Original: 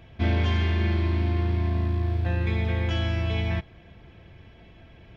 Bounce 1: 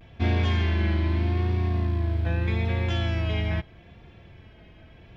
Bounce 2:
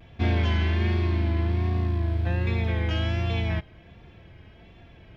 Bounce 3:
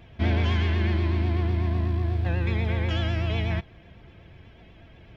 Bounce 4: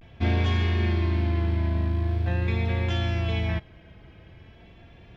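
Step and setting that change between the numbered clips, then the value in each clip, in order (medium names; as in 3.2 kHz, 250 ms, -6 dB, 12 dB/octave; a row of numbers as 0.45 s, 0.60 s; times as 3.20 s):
vibrato, rate: 0.8 Hz, 1.3 Hz, 8.1 Hz, 0.44 Hz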